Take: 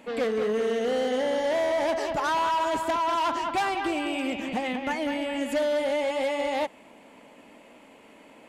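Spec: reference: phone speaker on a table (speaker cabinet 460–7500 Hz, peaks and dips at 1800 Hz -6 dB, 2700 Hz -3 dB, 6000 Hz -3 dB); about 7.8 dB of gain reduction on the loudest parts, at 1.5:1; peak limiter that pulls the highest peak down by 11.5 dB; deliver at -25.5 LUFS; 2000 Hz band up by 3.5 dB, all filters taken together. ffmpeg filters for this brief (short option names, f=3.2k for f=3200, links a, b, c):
-af "equalizer=f=2k:t=o:g=8.5,acompressor=threshold=-43dB:ratio=1.5,alimiter=level_in=9.5dB:limit=-24dB:level=0:latency=1,volume=-9.5dB,highpass=f=460:w=0.5412,highpass=f=460:w=1.3066,equalizer=f=1.8k:t=q:w=4:g=-6,equalizer=f=2.7k:t=q:w=4:g=-3,equalizer=f=6k:t=q:w=4:g=-3,lowpass=f=7.5k:w=0.5412,lowpass=f=7.5k:w=1.3066,volume=17dB"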